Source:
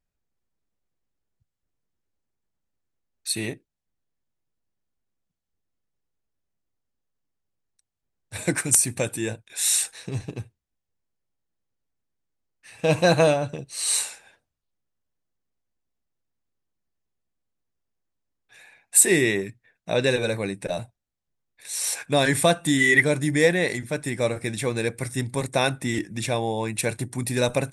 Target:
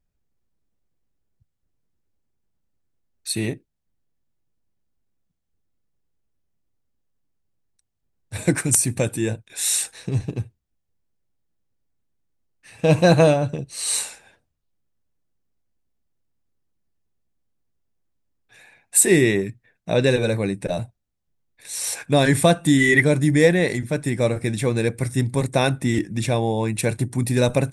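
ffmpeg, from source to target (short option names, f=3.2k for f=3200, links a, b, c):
-af "lowshelf=f=420:g=8"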